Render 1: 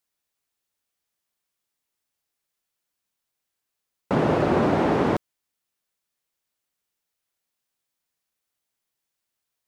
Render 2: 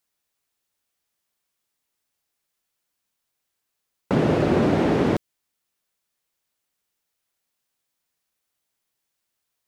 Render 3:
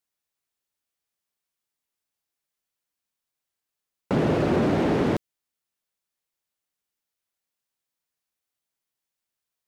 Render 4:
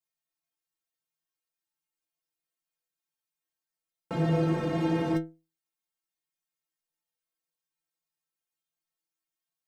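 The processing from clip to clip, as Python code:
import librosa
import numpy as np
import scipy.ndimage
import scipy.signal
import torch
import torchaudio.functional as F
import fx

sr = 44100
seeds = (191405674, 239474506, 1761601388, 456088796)

y1 = fx.dynamic_eq(x, sr, hz=990.0, q=0.9, threshold_db=-37.0, ratio=4.0, max_db=-7)
y1 = y1 * librosa.db_to_amplitude(3.0)
y2 = fx.leveller(y1, sr, passes=1)
y2 = y2 * librosa.db_to_amplitude(-5.0)
y3 = fx.stiff_resonator(y2, sr, f0_hz=160.0, decay_s=0.31, stiffness=0.008)
y3 = y3 * librosa.db_to_amplitude(5.5)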